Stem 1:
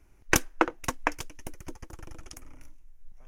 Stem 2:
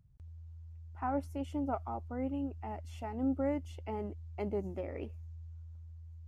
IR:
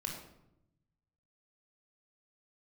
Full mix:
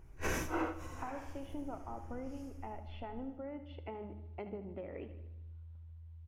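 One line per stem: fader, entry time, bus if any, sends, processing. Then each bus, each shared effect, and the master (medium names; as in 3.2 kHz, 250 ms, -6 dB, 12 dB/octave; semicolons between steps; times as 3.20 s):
-1.5 dB, 0.00 s, send -19.5 dB, echo send -14.5 dB, phase randomisation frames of 200 ms; tilt shelf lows +4 dB, about 1.4 kHz; compression 12:1, threshold -31 dBFS, peak gain reduction 13 dB; auto duck -24 dB, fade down 0.25 s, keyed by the second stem
-0.5 dB, 0.00 s, send -9 dB, echo send -11.5 dB, steep low-pass 3.8 kHz; compression 12:1, threshold -41 dBFS, peak gain reduction 14 dB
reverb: on, RT60 0.85 s, pre-delay 20 ms
echo: feedback delay 76 ms, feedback 58%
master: none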